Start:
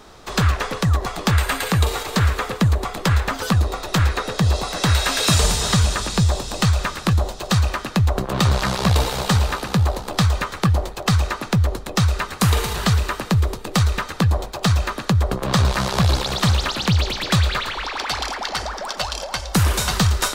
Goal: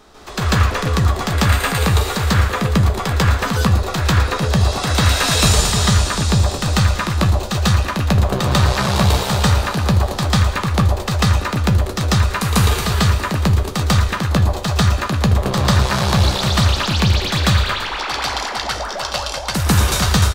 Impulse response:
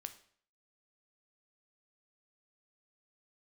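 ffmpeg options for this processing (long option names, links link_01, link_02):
-filter_complex "[0:a]asplit=2[link_01][link_02];[link_02]adelay=14,volume=-11.5dB[link_03];[link_01][link_03]amix=inputs=2:normalize=0,asplit=2[link_04][link_05];[1:a]atrim=start_sample=2205,adelay=144[link_06];[link_05][link_06]afir=irnorm=-1:irlink=0,volume=9.5dB[link_07];[link_04][link_07]amix=inputs=2:normalize=0,volume=-3.5dB"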